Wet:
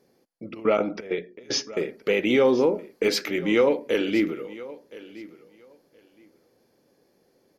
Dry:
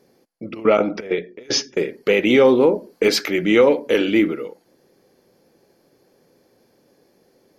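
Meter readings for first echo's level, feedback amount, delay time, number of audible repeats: −18.5 dB, 17%, 1,019 ms, 2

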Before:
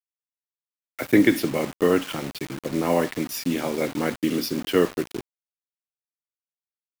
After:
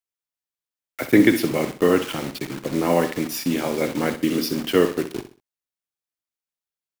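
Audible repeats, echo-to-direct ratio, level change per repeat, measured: 3, −11.0 dB, −10.0 dB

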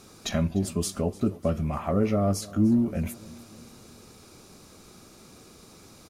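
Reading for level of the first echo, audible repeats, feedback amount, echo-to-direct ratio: −20.5 dB, 3, 53%, −19.0 dB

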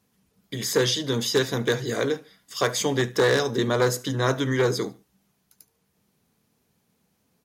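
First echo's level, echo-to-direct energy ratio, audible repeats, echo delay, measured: −22.5 dB, −22.0 dB, 2, 73 ms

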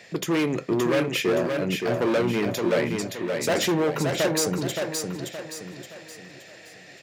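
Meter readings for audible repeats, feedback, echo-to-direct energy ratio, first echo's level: 4, 41%, −3.5 dB, −4.5 dB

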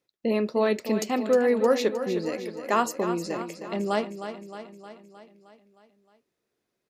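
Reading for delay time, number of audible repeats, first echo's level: 310 ms, 6, −10.0 dB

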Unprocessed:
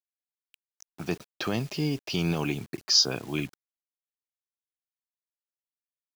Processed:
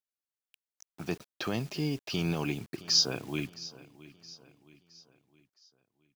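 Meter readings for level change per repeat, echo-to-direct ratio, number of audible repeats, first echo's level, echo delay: −7.0 dB, −17.5 dB, 3, −18.5 dB, 667 ms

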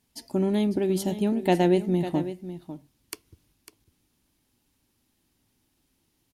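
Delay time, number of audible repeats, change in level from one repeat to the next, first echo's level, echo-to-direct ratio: 550 ms, 1, repeats not evenly spaced, −12.5 dB, −12.5 dB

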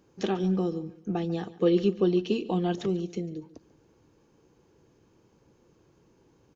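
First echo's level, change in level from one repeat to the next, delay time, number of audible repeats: −18.5 dB, −9.5 dB, 143 ms, 2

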